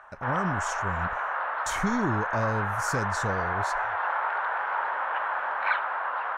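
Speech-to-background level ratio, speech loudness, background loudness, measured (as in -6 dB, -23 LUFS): -3.0 dB, -32.0 LUFS, -29.0 LUFS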